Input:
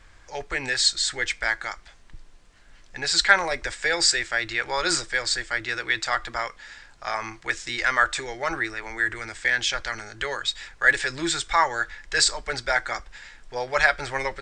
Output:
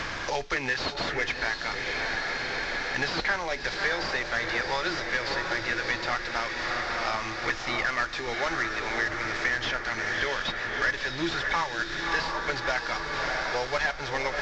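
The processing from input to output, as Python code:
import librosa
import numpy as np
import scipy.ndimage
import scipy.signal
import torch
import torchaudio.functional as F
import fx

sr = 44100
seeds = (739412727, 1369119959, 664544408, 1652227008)

y = fx.cvsd(x, sr, bps=32000)
y = fx.echo_diffused(y, sr, ms=636, feedback_pct=60, wet_db=-7.0)
y = fx.band_squash(y, sr, depth_pct=100)
y = y * librosa.db_to_amplitude(-2.5)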